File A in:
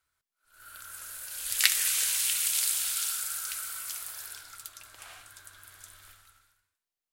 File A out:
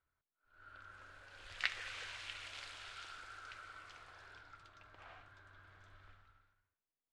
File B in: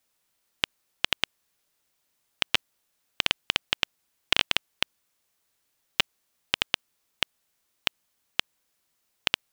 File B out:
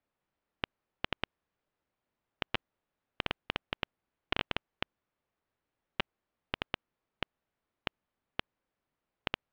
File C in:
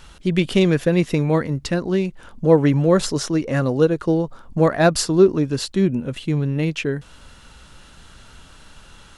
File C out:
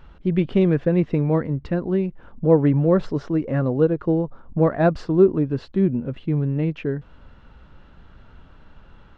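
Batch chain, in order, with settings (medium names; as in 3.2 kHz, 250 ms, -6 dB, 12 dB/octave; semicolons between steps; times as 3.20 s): tape spacing loss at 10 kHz 44 dB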